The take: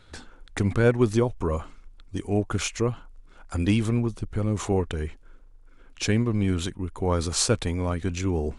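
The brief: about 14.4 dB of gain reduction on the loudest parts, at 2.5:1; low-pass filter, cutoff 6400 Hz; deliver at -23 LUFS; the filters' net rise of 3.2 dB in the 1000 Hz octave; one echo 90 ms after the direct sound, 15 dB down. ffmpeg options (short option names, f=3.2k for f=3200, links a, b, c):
-af "lowpass=6.4k,equalizer=f=1k:t=o:g=4,acompressor=threshold=-37dB:ratio=2.5,aecho=1:1:90:0.178,volume=14dB"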